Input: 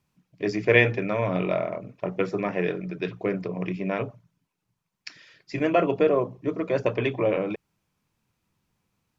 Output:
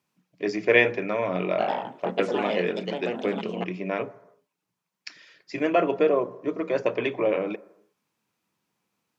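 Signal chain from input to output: high-pass 230 Hz 12 dB/octave; reverberation, pre-delay 8 ms, DRR 16.5 dB; 1.49–3.93 s: ever faster or slower copies 97 ms, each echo +3 st, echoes 2

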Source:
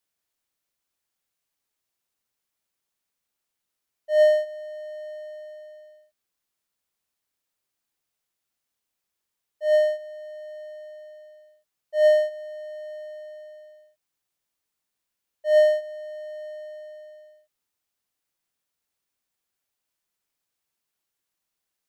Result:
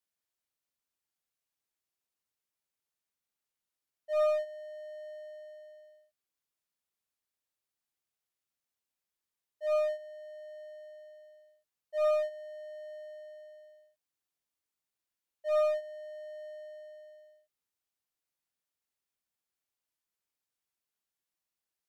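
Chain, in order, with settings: one-sided clip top -19.5 dBFS, bottom -12 dBFS; trim -8 dB

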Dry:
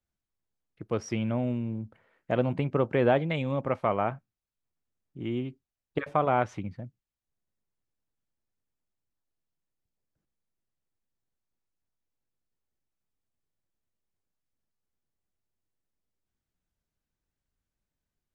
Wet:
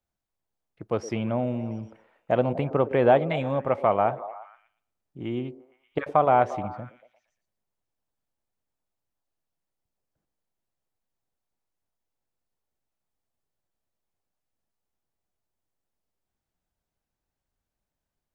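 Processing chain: peaking EQ 740 Hz +7 dB 1.2 oct; repeats whose band climbs or falls 116 ms, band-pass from 380 Hz, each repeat 0.7 oct, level -11 dB

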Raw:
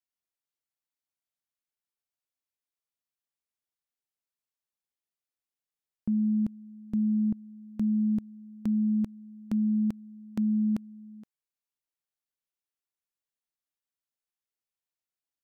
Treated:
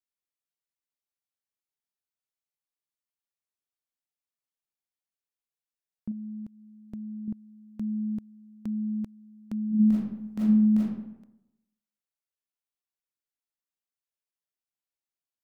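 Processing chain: 6.11–7.28 s: compression, threshold -32 dBFS, peak gain reduction 7.5 dB; 9.68–10.98 s: reverb throw, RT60 0.9 s, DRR -9 dB; trim -4.5 dB

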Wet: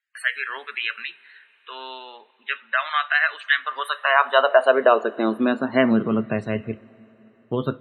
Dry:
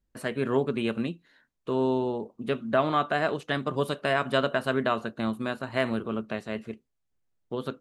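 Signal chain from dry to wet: high-pass sweep 1.8 kHz -> 94 Hz, 3.54–6.59 s; loudest bins only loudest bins 64; two-slope reverb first 0.3 s, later 4.3 s, from -18 dB, DRR 16.5 dB; trim +7 dB

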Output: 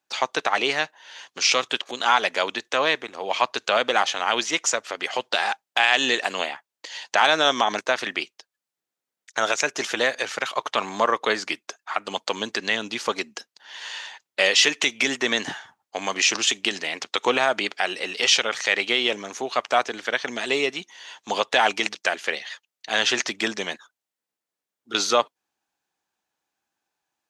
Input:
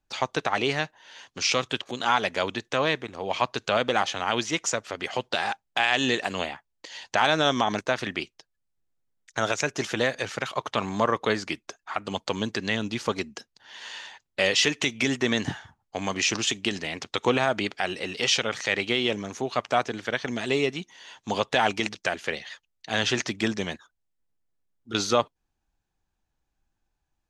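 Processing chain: Bessel high-pass 340 Hz, order 2; bass shelf 460 Hz -5 dB; trim +5 dB

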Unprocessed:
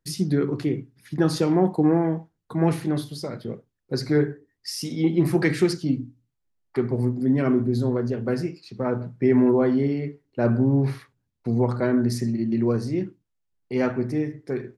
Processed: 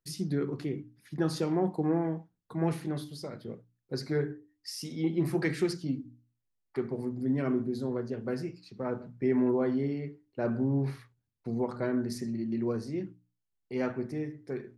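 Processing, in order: hum notches 60/120/180/240/300 Hz; trim -8 dB

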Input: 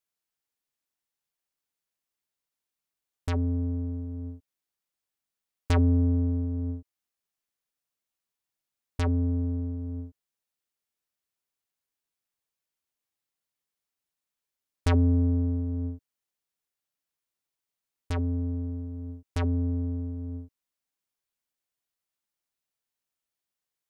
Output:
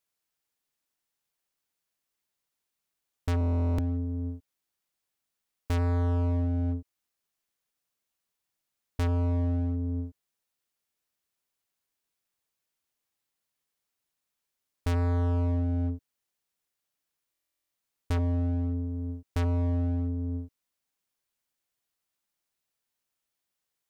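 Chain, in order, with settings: overload inside the chain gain 28.5 dB; buffer glitch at 3.39/17.32 s, samples 1024, times 16; trim +3.5 dB

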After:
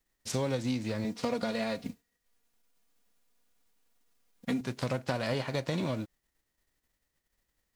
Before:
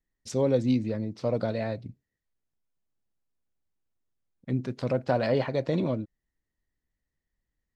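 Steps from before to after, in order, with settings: formants flattened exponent 0.6; 1.04–4.61 s: comb 4.2 ms, depth 89%; compression 5:1, threshold -32 dBFS, peak gain reduction 12.5 dB; trim +3 dB

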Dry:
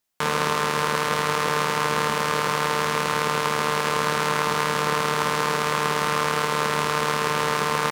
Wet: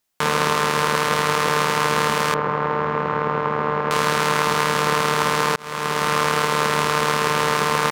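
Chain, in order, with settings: 2.34–3.91 s: low-pass 1.3 kHz 12 dB/octave; 5.56–6.24 s: fade in equal-power; trim +3.5 dB

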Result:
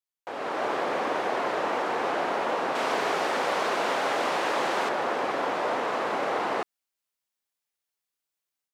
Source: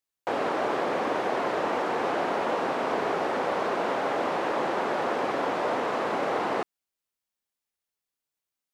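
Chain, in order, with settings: bass shelf 410 Hz -6.5 dB; level rider gain up to 9 dB; 2.75–4.89 s: treble shelf 2.6 kHz +9 dB; trim -7.5 dB

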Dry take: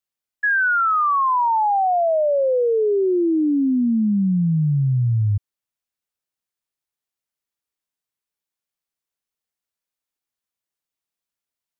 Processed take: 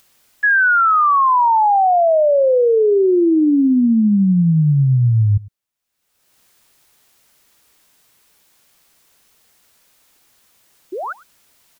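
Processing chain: upward compressor, threshold -41 dBFS; painted sound rise, 10.92–11.13 s, 330–1600 Hz -30 dBFS; echo from a far wall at 18 m, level -21 dB; trim +5 dB

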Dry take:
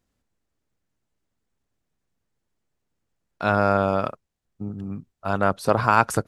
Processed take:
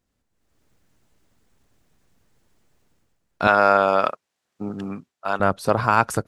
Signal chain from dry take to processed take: 3.47–5.40 s: frequency weighting A; level rider gain up to 16 dB; trim -1 dB

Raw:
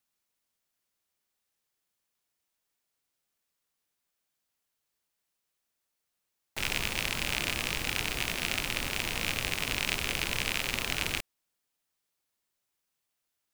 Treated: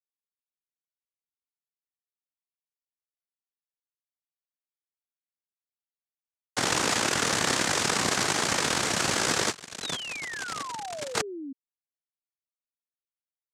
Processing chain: spectral levelling over time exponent 0.6; 9.51–11.15 s: gate -26 dBFS, range -17 dB; bass shelf 370 Hz -10 dB; Chebyshev shaper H 8 -12 dB, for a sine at -7 dBFS; in parallel at +2 dB: peak limiter -15 dBFS, peak gain reduction 7.5 dB; on the sum: small samples zeroed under -39 dBFS; tone controls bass -3 dB, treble -7 dB; noise-vocoded speech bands 3; 9.82–11.53 s: painted sound fall 260–4100 Hz -37 dBFS

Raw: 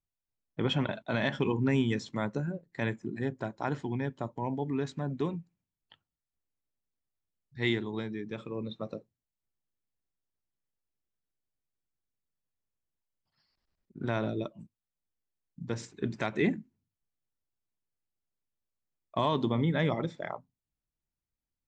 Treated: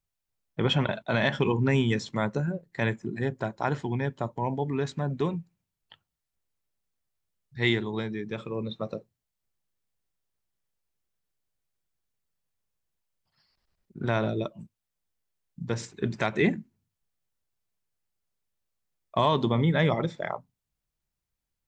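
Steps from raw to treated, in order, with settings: peaking EQ 280 Hz -5.5 dB 0.51 oct; trim +5.5 dB

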